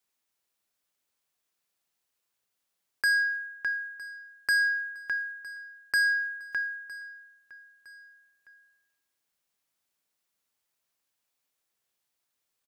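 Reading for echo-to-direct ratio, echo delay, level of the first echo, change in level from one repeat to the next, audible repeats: -19.0 dB, 0.96 s, -20.0 dB, -6.5 dB, 2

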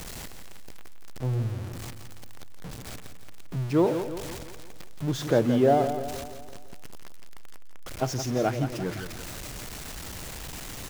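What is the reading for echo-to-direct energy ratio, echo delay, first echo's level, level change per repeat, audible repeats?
-8.0 dB, 0.17 s, -9.5 dB, -6.0 dB, 5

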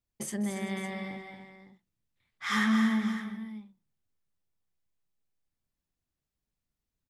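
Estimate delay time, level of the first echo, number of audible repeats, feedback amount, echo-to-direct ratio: 0.199 s, -17.0 dB, 5, no steady repeat, -5.5 dB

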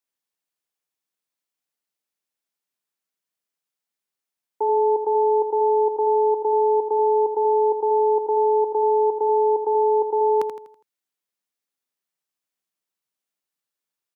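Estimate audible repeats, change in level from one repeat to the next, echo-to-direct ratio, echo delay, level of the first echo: 4, -7.5 dB, -7.0 dB, 82 ms, -8.0 dB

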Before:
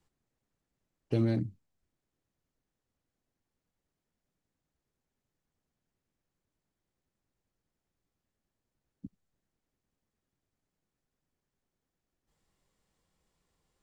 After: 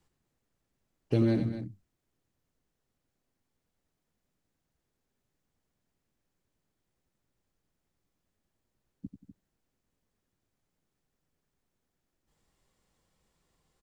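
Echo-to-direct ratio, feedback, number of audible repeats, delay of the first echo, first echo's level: -7.0 dB, no steady repeat, 3, 91 ms, -9.5 dB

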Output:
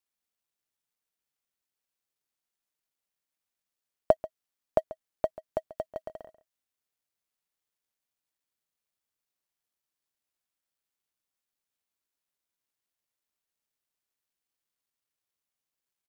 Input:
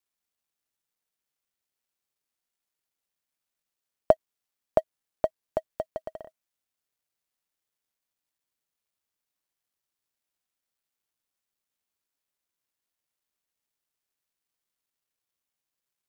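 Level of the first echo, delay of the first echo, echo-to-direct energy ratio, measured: -17.0 dB, 0.138 s, -17.0 dB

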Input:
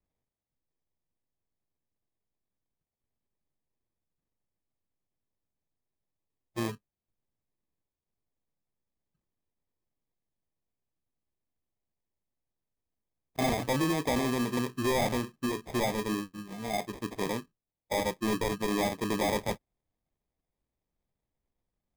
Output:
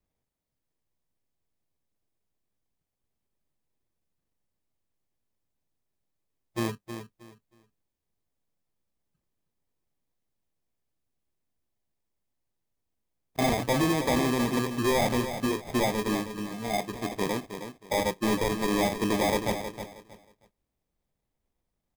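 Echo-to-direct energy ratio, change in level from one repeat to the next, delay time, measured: -9.0 dB, -12.5 dB, 0.316 s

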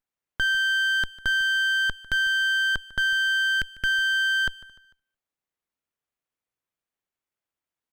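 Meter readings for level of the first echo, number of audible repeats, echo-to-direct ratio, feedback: -19.5 dB, 2, -19.0 dB, 40%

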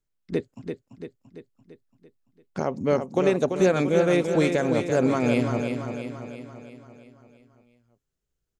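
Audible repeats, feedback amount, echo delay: 6, 54%, 0.339 s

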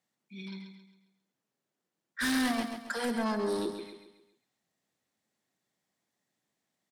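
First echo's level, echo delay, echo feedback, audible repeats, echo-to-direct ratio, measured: -8.0 dB, 0.135 s, 41%, 4, -7.0 dB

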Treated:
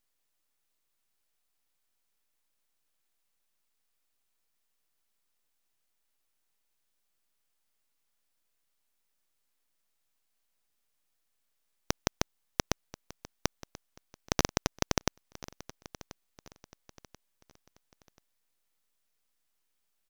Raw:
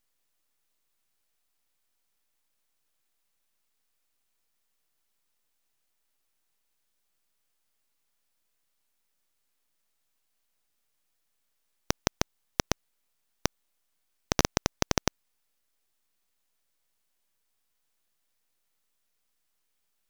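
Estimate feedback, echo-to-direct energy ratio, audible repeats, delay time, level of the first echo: 38%, -17.5 dB, 3, 1.035 s, -18.0 dB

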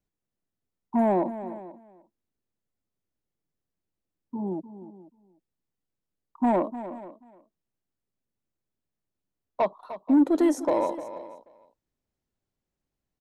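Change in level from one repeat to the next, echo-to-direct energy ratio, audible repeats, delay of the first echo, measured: no steady repeat, -12.5 dB, 3, 0.302 s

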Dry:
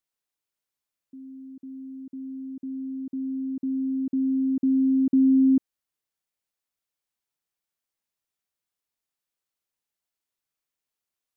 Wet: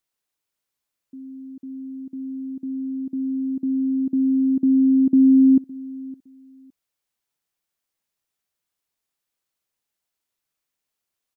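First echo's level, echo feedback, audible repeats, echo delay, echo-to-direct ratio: -21.0 dB, 22%, 2, 0.562 s, -21.0 dB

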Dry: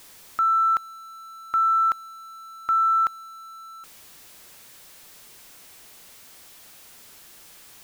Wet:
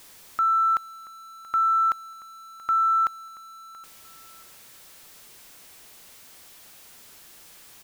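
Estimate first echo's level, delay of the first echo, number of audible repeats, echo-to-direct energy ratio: -18.0 dB, 0.68 s, 2, -17.5 dB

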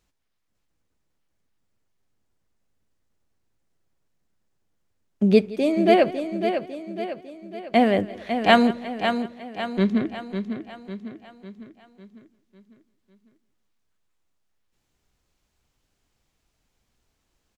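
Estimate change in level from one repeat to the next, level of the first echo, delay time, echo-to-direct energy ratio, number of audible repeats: no steady repeat, -19.5 dB, 0.17 s, -6.5 dB, 9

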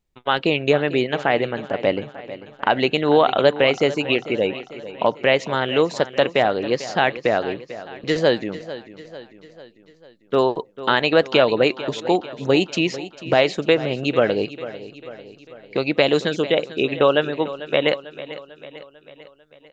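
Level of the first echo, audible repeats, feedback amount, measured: -15.0 dB, 4, 54%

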